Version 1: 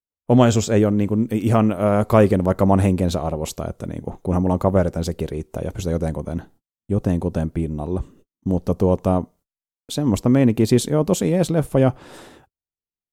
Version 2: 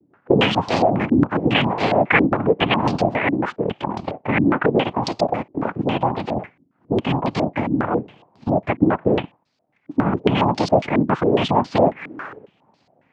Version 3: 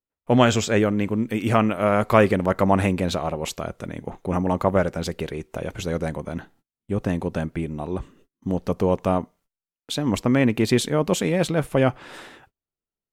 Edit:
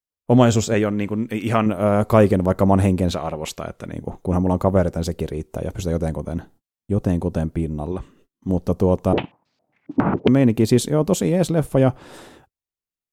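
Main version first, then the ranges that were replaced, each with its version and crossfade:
1
0.74–1.66 from 3
3.11–3.92 from 3
7.92–8.49 from 3
9.13–10.28 from 2

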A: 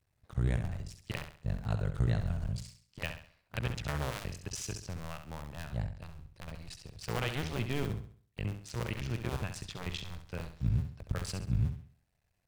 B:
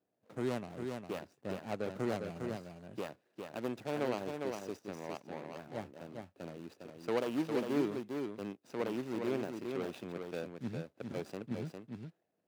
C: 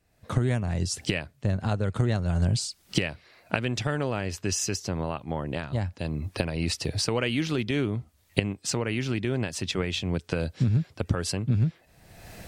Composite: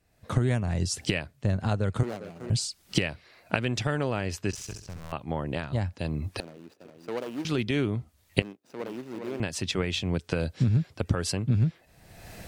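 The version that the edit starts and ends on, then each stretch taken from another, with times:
C
2.03–2.5 from B
4.51–5.12 from A
6.4–7.45 from B
8.42–9.4 from B

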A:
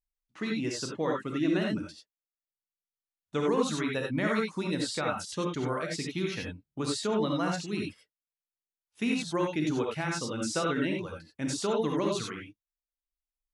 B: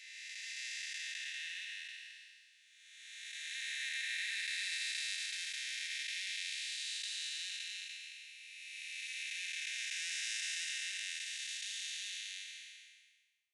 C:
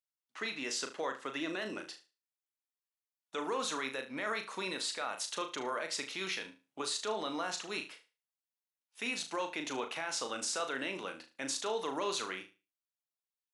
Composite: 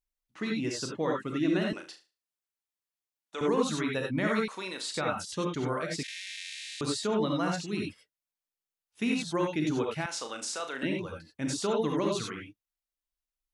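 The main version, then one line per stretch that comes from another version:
A
1.73–3.41 from C
4.48–4.94 from C
6.03–6.81 from B
10.06–10.83 from C

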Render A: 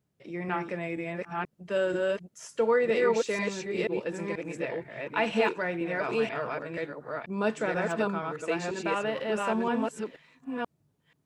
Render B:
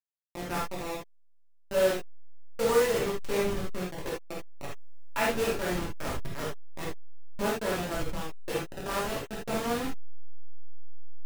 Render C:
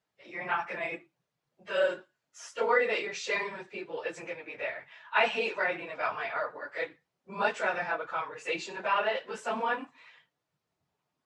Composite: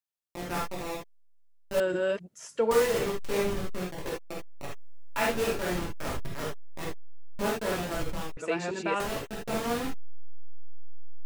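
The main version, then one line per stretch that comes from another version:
B
1.8–2.71 from A
8.37–9 from A
not used: C

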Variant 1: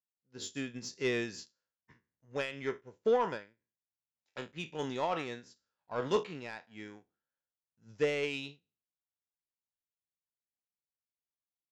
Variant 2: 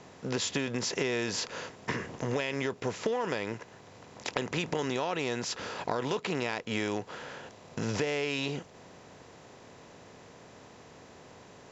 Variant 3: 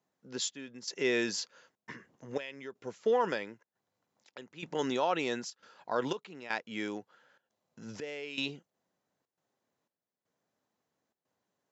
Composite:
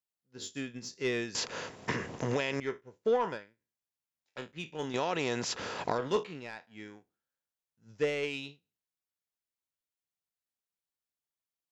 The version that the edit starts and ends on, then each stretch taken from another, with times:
1
1.35–2.6 from 2
4.94–5.98 from 2
not used: 3

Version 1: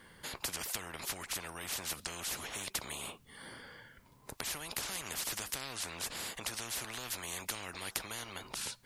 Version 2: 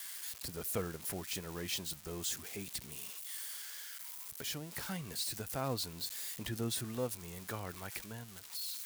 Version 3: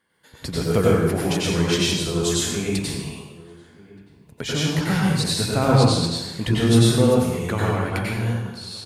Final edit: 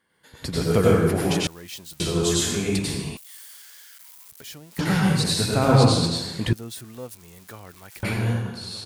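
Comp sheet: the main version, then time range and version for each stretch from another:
3
1.47–2 from 2
3.17–4.79 from 2
6.53–8.03 from 2
not used: 1

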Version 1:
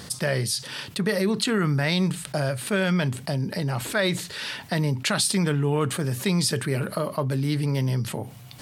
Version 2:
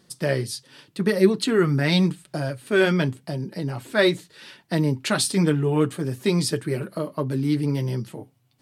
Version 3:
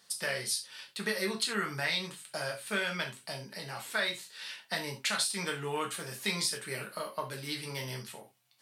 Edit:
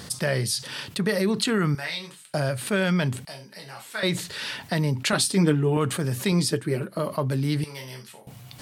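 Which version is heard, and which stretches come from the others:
1
1.75–2.34 from 3
3.25–4.03 from 3
5.13–5.77 from 2
6.32–6.99 from 2
7.64–8.27 from 3

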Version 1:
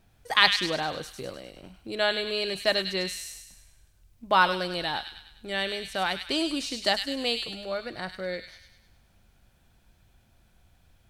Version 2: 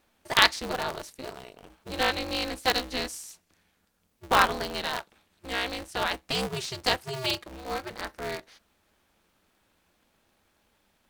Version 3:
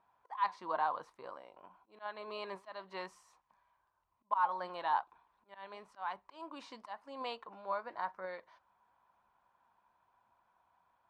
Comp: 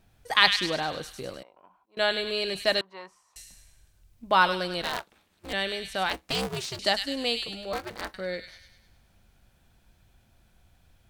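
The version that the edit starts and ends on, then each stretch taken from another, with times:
1
1.43–1.97 from 3
2.81–3.36 from 3
4.82–5.53 from 2
6.09–6.79 from 2
7.73–8.14 from 2

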